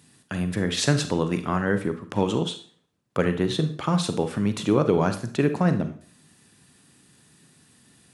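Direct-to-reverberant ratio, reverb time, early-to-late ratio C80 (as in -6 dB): 9.0 dB, 0.45 s, 16.0 dB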